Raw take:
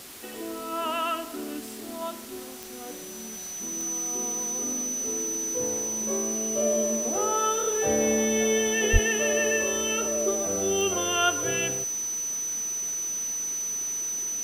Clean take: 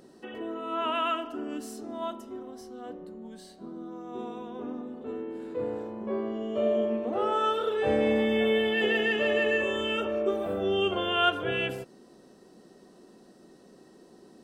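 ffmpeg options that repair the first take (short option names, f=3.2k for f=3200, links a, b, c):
-filter_complex "[0:a]adeclick=t=4,bandreject=f=6k:w=30,asplit=3[a][b][c];[a]afade=t=out:st=8.92:d=0.02[d];[b]highpass=f=140:w=0.5412,highpass=f=140:w=1.3066,afade=t=in:st=8.92:d=0.02,afade=t=out:st=9.04:d=0.02[e];[c]afade=t=in:st=9.04:d=0.02[f];[d][e][f]amix=inputs=3:normalize=0,afwtdn=0.0071"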